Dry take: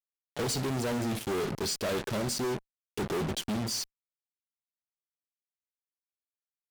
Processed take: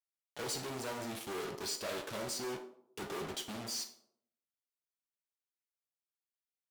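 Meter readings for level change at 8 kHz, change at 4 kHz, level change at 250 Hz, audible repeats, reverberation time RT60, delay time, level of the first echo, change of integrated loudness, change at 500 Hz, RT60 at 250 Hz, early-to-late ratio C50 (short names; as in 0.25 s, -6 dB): -5.5 dB, -5.5 dB, -12.0 dB, none, 0.70 s, none, none, -8.0 dB, -8.5 dB, 0.80 s, 10.0 dB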